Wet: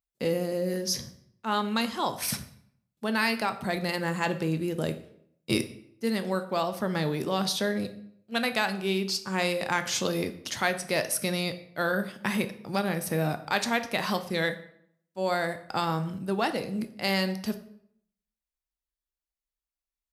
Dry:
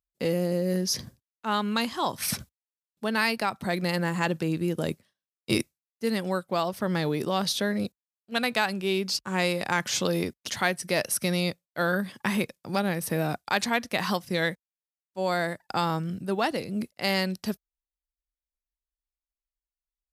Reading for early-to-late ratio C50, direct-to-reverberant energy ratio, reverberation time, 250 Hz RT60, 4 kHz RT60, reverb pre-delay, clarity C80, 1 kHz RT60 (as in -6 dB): 13.0 dB, 8.5 dB, 0.65 s, 0.75 s, 0.55 s, 8 ms, 16.0 dB, 0.65 s